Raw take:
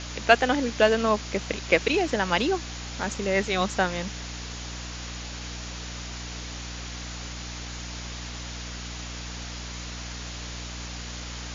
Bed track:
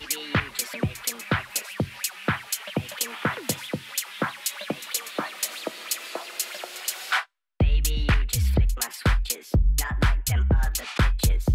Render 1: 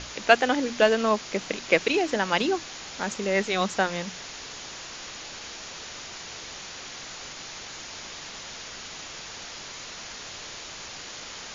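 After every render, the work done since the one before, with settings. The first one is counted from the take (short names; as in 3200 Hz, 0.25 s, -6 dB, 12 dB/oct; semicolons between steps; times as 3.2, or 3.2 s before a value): notches 60/120/180/240/300 Hz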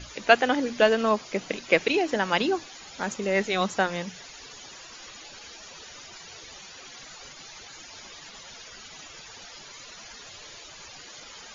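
denoiser 13 dB, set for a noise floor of -40 dBFS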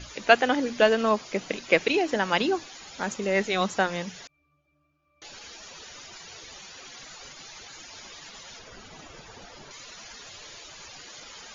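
4.27–5.22 octave resonator D, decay 0.7 s; 8.59–9.71 tilt shelf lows +6.5 dB, about 1300 Hz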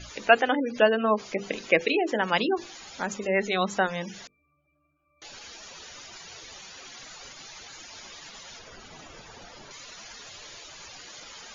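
notches 50/100/150/200/250/300/350/400/450/500 Hz; spectral gate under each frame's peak -25 dB strong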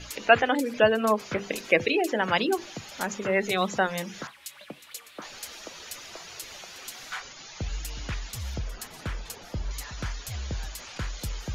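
add bed track -12.5 dB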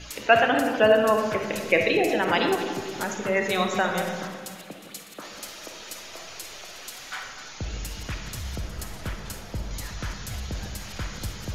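regenerating reverse delay 0.126 s, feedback 62%, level -10.5 dB; digital reverb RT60 1.5 s, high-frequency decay 0.35×, pre-delay 10 ms, DRR 4 dB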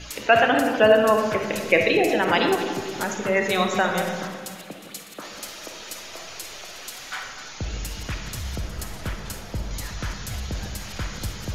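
gain +2.5 dB; limiter -3 dBFS, peak gain reduction 2.5 dB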